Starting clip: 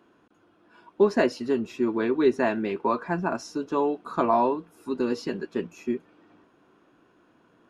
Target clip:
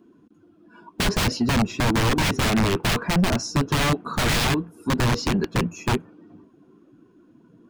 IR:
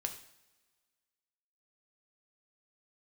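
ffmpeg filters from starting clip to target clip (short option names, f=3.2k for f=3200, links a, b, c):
-filter_complex "[0:a]aeval=exprs='(mod(13.3*val(0)+1,2)-1)/13.3':c=same,acrossover=split=3900[a][b];[b]acompressor=threshold=-39dB:ratio=4:attack=1:release=60[c];[a][c]amix=inputs=2:normalize=0,afftdn=nr=14:nf=-54,bass=f=250:g=13,treble=f=4k:g=8,aeval=exprs='0.224*sin(PI/2*1.58*val(0)/0.224)':c=same,volume=-2dB"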